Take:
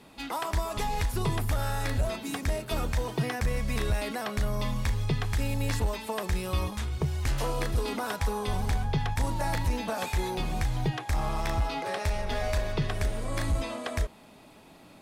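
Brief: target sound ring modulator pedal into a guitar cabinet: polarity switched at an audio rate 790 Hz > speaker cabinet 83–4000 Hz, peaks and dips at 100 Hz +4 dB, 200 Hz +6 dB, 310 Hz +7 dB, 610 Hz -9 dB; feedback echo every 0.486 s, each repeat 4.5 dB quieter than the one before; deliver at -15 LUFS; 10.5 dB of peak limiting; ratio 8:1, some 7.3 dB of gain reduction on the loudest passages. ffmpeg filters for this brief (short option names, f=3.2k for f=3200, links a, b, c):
-af "acompressor=threshold=-30dB:ratio=8,alimiter=level_in=7.5dB:limit=-24dB:level=0:latency=1,volume=-7.5dB,aecho=1:1:486|972|1458|1944|2430|2916|3402|3888|4374:0.596|0.357|0.214|0.129|0.0772|0.0463|0.0278|0.0167|0.01,aeval=exprs='val(0)*sgn(sin(2*PI*790*n/s))':c=same,highpass=83,equalizer=f=100:t=q:w=4:g=4,equalizer=f=200:t=q:w=4:g=6,equalizer=f=310:t=q:w=4:g=7,equalizer=f=610:t=q:w=4:g=-9,lowpass=f=4k:w=0.5412,lowpass=f=4k:w=1.3066,volume=22.5dB"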